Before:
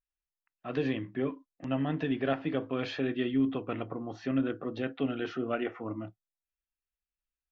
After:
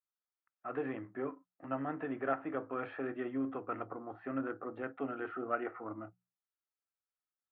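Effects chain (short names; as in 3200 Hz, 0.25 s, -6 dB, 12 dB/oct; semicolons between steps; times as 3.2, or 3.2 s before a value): half-wave gain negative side -3 dB; speaker cabinet 120–2000 Hz, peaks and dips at 160 Hz -10 dB, 240 Hz -5 dB, 780 Hz +4 dB, 1300 Hz +9 dB; notches 60/120/180 Hz; gain -4 dB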